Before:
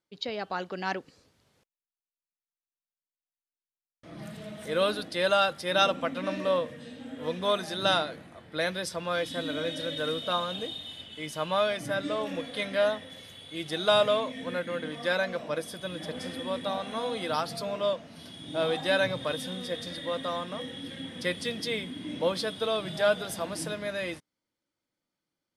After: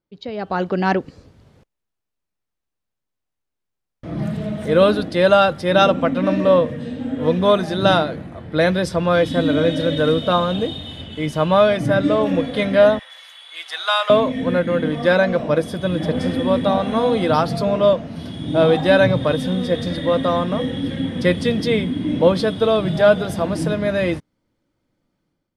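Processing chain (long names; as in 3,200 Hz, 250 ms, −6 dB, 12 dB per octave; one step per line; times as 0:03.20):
0:12.99–0:14.10: high-pass filter 990 Hz 24 dB per octave
spectral tilt −3 dB per octave
automatic gain control gain up to 12 dB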